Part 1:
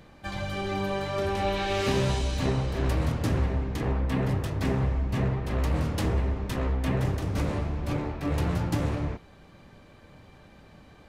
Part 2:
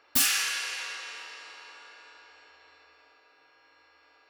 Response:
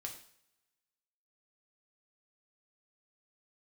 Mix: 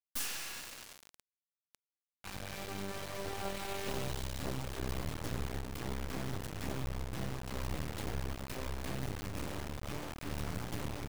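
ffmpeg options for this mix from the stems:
-filter_complex "[0:a]adelay=2000,volume=-9dB[link_01];[1:a]volume=-2dB,afade=type=in:start_time=1.55:duration=0.26:silence=0.375837[link_02];[link_01][link_02]amix=inputs=2:normalize=0,acrusher=bits=4:dc=4:mix=0:aa=0.000001"

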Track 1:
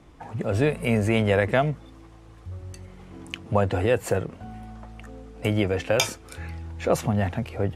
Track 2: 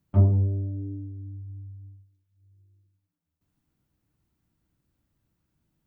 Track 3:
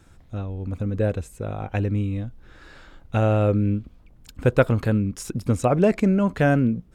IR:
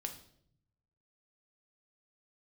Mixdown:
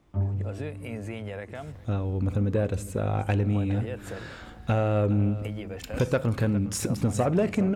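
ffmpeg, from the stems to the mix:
-filter_complex "[0:a]alimiter=limit=-14.5dB:level=0:latency=1:release=219,volume=-11dB,asplit=2[link_01][link_02];[link_02]volume=-21.5dB[link_03];[1:a]volume=-8dB[link_04];[2:a]acompressor=threshold=-27dB:ratio=3,highpass=50,adelay=1550,volume=2.5dB,asplit=3[link_05][link_06][link_07];[link_06]volume=-6.5dB[link_08];[link_07]volume=-14.5dB[link_09];[3:a]atrim=start_sample=2205[link_10];[link_08][link_10]afir=irnorm=-1:irlink=0[link_11];[link_03][link_09]amix=inputs=2:normalize=0,aecho=0:1:410:1[link_12];[link_01][link_04][link_05][link_11][link_12]amix=inputs=5:normalize=0,asoftclip=type=tanh:threshold=-14.5dB"

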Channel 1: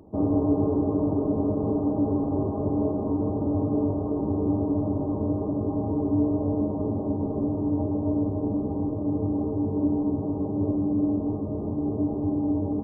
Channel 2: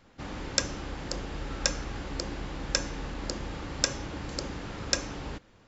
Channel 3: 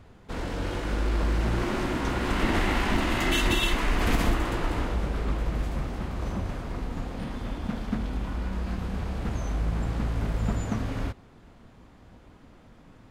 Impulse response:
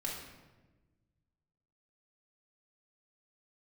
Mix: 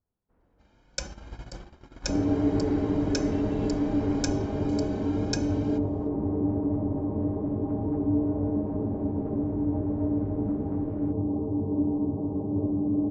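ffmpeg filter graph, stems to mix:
-filter_complex "[0:a]lowpass=1000,equalizer=frequency=570:width=1.9:gain=-2.5,adelay=1950,volume=-1.5dB[link_01];[1:a]aecho=1:1:1.3:0.98,asplit=2[link_02][link_03];[link_03]adelay=3.6,afreqshift=1.8[link_04];[link_02][link_04]amix=inputs=2:normalize=1,adelay=400,volume=-6dB[link_05];[2:a]lowpass=1300,volume=-15dB[link_06];[link_01][link_05][link_06]amix=inputs=3:normalize=0,agate=range=-20dB:threshold=-36dB:ratio=16:detection=peak"

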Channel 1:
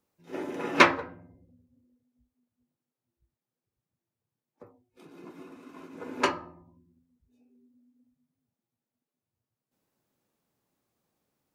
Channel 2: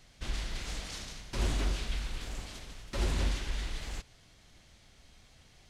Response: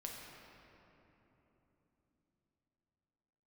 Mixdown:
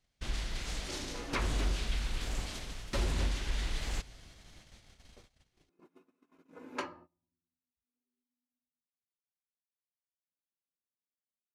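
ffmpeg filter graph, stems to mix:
-filter_complex "[0:a]flanger=delay=3.4:depth=1.8:regen=-63:speed=0.3:shape=sinusoidal,adelay=550,volume=-6.5dB[link_01];[1:a]dynaudnorm=framelen=440:gausssize=5:maxgain=4.5dB,volume=-1dB,asplit=2[link_02][link_03];[link_03]volume=-23dB[link_04];[2:a]atrim=start_sample=2205[link_05];[link_04][link_05]afir=irnorm=-1:irlink=0[link_06];[link_01][link_02][link_06]amix=inputs=3:normalize=0,agate=range=-20dB:threshold=-55dB:ratio=16:detection=peak,alimiter=limit=-22dB:level=0:latency=1:release=492"

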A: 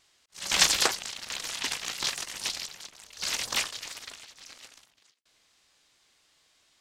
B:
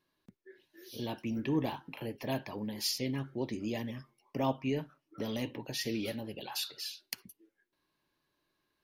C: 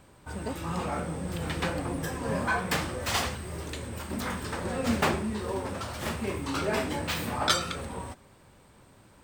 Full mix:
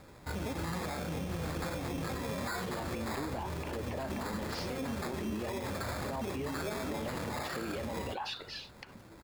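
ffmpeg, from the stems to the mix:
ffmpeg -i stem1.wav -i stem2.wav -i stem3.wav -filter_complex "[1:a]lowpass=3600,equalizer=frequency=860:width_type=o:width=2.7:gain=12.5,adelay=1700,volume=-0.5dB[link_01];[2:a]acompressor=threshold=-29dB:ratio=6,acrusher=samples=15:mix=1:aa=0.000001,volume=2dB[link_02];[link_01]acompressor=threshold=-29dB:ratio=6,volume=0dB[link_03];[link_02][link_03]amix=inputs=2:normalize=0,alimiter=level_in=5dB:limit=-24dB:level=0:latency=1:release=79,volume=-5dB" out.wav

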